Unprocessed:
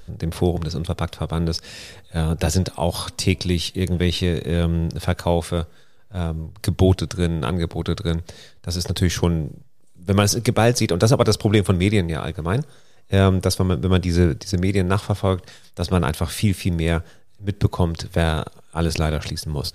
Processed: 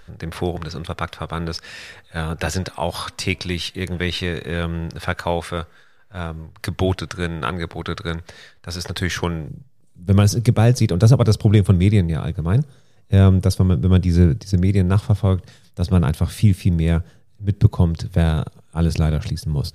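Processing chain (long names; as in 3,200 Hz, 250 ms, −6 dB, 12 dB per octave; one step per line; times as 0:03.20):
parametric band 1,600 Hz +11.5 dB 2 octaves, from 0:09.48 120 Hz
level −5 dB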